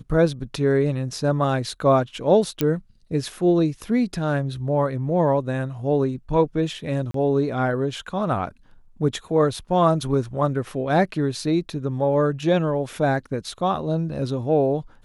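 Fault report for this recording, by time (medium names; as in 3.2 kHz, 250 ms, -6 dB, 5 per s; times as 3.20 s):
2.61 s: pop -8 dBFS
7.11–7.14 s: dropout 33 ms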